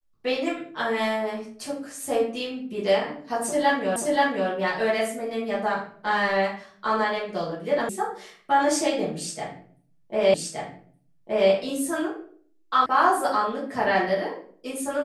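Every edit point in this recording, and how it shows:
3.96 repeat of the last 0.53 s
7.89 sound cut off
10.34 repeat of the last 1.17 s
12.86 sound cut off

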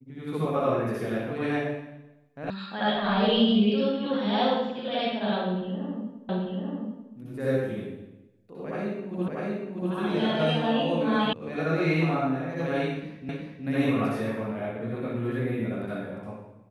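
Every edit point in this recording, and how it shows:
2.5 sound cut off
6.29 repeat of the last 0.84 s
9.28 repeat of the last 0.64 s
11.33 sound cut off
13.29 repeat of the last 0.37 s

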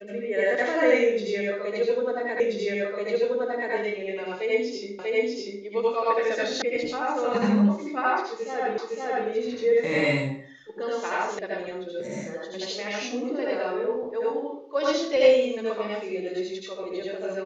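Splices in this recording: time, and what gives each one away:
2.4 repeat of the last 1.33 s
4.99 repeat of the last 0.64 s
6.62 sound cut off
8.78 repeat of the last 0.51 s
11.39 sound cut off

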